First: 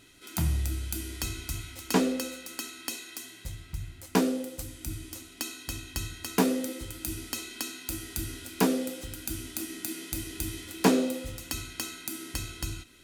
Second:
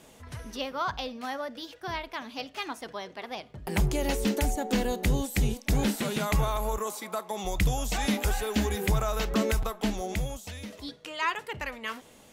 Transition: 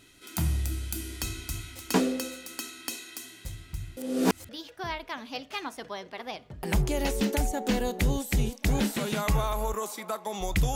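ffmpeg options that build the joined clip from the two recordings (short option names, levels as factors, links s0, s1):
-filter_complex "[0:a]apad=whole_dur=10.75,atrim=end=10.75,asplit=2[s0][s1];[s0]atrim=end=3.972[s2];[s1]atrim=start=3.968:end=4.492,asetpts=PTS-STARTPTS,areverse[s3];[1:a]atrim=start=1.528:end=7.79[s4];[s2][s3]acrossfade=d=0.004:c1=hsin:c2=hsin[s5];[s5][s4]acrossfade=d=0.004:c1=hsin:c2=hsin"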